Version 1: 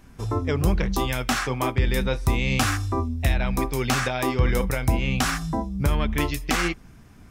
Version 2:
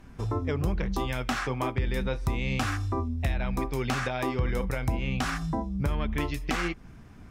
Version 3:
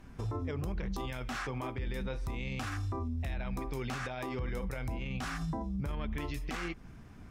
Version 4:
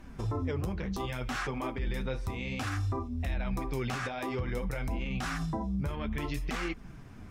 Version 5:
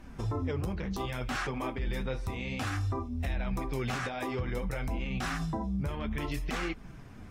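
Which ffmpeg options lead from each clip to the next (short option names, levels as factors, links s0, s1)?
-af "aemphasis=mode=reproduction:type=cd,acompressor=threshold=0.0355:ratio=2"
-af "alimiter=level_in=1.26:limit=0.0631:level=0:latency=1:release=44,volume=0.794,volume=0.75"
-af "flanger=delay=3.2:depth=9.1:regen=-37:speed=0.6:shape=triangular,volume=2.24"
-ar 44100 -c:a aac -b:a 48k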